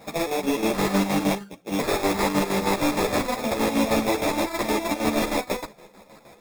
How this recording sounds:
chopped level 6.4 Hz, depth 60%, duty 55%
aliases and images of a low sample rate 3,000 Hz, jitter 0%
a shimmering, thickened sound

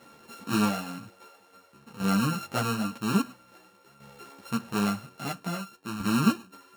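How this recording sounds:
a buzz of ramps at a fixed pitch in blocks of 32 samples
tremolo saw down 0.5 Hz, depth 70%
a shimmering, thickened sound

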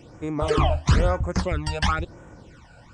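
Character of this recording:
phaser sweep stages 12, 1 Hz, lowest notch 340–4,400 Hz

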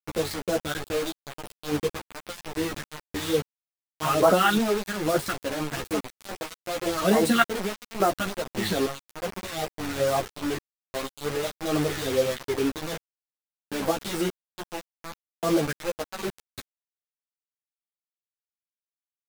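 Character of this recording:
phaser sweep stages 2, 2.4 Hz, lowest notch 480–3,100 Hz
sample-and-hold tremolo, depth 90%
a quantiser's noise floor 6 bits, dither none
a shimmering, thickened sound

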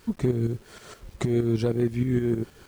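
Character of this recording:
tremolo saw up 6.4 Hz, depth 65%
a quantiser's noise floor 10 bits, dither none

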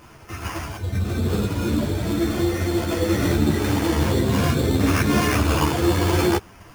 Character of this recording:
aliases and images of a low sample rate 3,900 Hz, jitter 0%
a shimmering, thickened sound

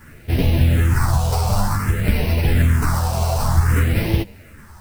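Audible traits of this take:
aliases and images of a low sample rate 3,400 Hz, jitter 0%
phaser sweep stages 4, 0.54 Hz, lowest notch 300–1,300 Hz
a quantiser's noise floor 10 bits, dither none
a shimmering, thickened sound

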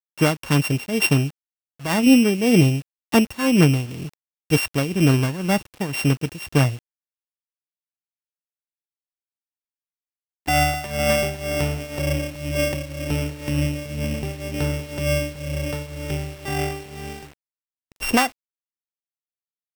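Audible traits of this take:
a buzz of ramps at a fixed pitch in blocks of 16 samples
tremolo triangle 2 Hz, depth 85%
a quantiser's noise floor 8 bits, dither none

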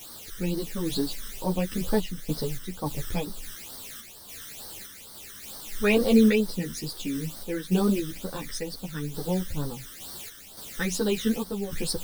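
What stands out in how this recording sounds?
a quantiser's noise floor 6 bits, dither triangular
phaser sweep stages 12, 2.2 Hz, lowest notch 760–2,500 Hz
sample-and-hold tremolo
a shimmering, thickened sound

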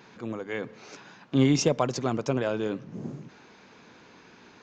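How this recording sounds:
background noise floor −54 dBFS
spectral slope −5.5 dB per octave

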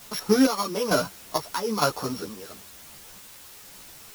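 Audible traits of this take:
a buzz of ramps at a fixed pitch in blocks of 8 samples
chopped level 1.1 Hz, depth 60%, duty 50%
a quantiser's noise floor 8 bits, dither triangular
a shimmering, thickened sound

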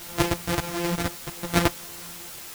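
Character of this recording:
a buzz of ramps at a fixed pitch in blocks of 256 samples
sample-and-hold tremolo, depth 85%
a quantiser's noise floor 8 bits, dither triangular
a shimmering, thickened sound

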